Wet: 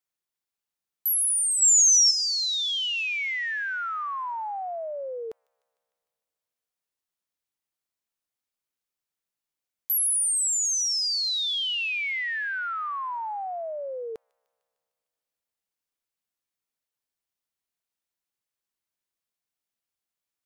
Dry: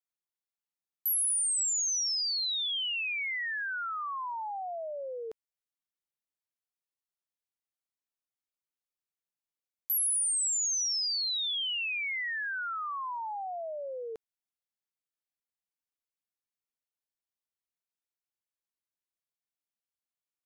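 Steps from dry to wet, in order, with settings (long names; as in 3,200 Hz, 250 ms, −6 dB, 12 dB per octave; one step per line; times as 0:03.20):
0:01.62–0:02.11: parametric band 6,100 Hz +8 dB 2.3 octaves
delay with a high-pass on its return 151 ms, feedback 66%, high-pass 2,100 Hz, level −21 dB
level +4.5 dB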